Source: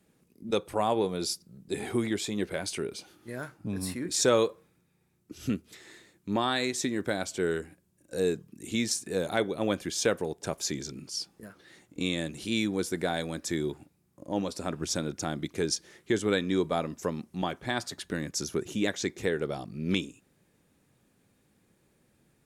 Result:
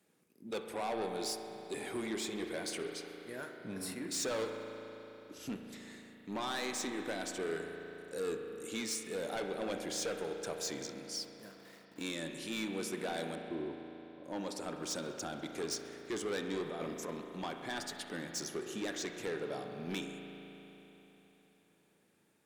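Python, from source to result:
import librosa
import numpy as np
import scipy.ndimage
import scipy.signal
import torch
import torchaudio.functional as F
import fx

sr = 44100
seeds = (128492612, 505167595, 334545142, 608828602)

y = fx.delta_hold(x, sr, step_db=-51.0, at=(11.21, 12.03))
y = fx.highpass(y, sr, hz=110.0, slope=6)
y = fx.low_shelf(y, sr, hz=170.0, db=-11.5)
y = fx.over_compress(y, sr, threshold_db=-33.0, ratio=-0.5, at=(16.66, 17.11))
y = 10.0 ** (-29.5 / 20.0) * np.tanh(y / 10.0 ** (-29.5 / 20.0))
y = fx.brickwall_lowpass(y, sr, high_hz=1100.0, at=(13.35, 14.24))
y = fx.echo_thinned(y, sr, ms=66, feedback_pct=77, hz=420.0, wet_db=-24.0)
y = fx.rev_spring(y, sr, rt60_s=3.7, pass_ms=(36,), chirp_ms=45, drr_db=4.0)
y = y * 10.0 ** (-3.5 / 20.0)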